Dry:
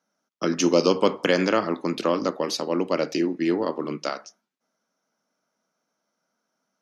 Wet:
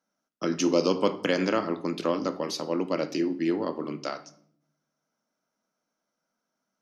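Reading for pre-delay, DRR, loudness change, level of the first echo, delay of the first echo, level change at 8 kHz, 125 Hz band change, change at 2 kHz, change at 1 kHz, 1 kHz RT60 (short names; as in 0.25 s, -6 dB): 3 ms, 11.5 dB, -4.0 dB, none, none, -5.0 dB, -3.5 dB, -5.0 dB, -4.5 dB, 0.55 s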